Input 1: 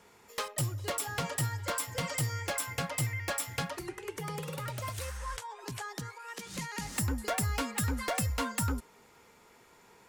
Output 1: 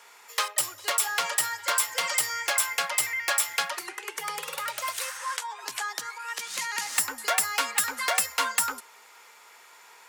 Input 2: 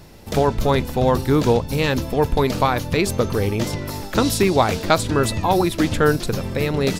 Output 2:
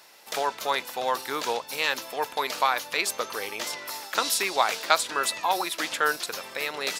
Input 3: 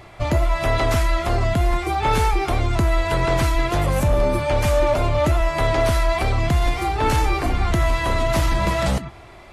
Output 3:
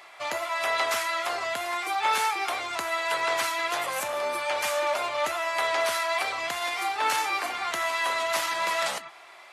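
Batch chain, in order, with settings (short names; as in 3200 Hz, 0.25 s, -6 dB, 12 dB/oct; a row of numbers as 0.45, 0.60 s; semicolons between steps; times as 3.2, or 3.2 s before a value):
HPF 940 Hz 12 dB/oct; match loudness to -27 LUFS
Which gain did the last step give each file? +10.0, -0.5, -0.5 dB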